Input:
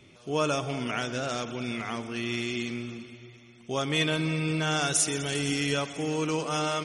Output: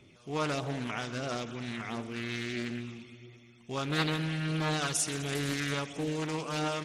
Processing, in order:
phase shifter 1.5 Hz, delay 1.2 ms, feedback 29%
highs frequency-modulated by the lows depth 0.44 ms
level −5 dB

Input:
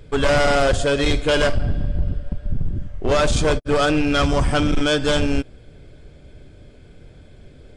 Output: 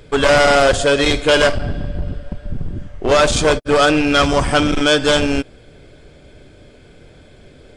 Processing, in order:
low-shelf EQ 200 Hz −9.5 dB
level +6.5 dB

